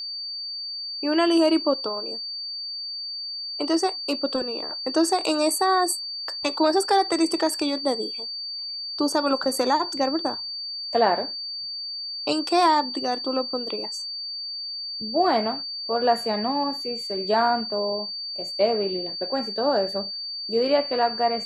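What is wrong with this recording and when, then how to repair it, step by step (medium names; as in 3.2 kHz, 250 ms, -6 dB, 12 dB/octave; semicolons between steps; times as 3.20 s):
whine 4.6 kHz -30 dBFS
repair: band-stop 4.6 kHz, Q 30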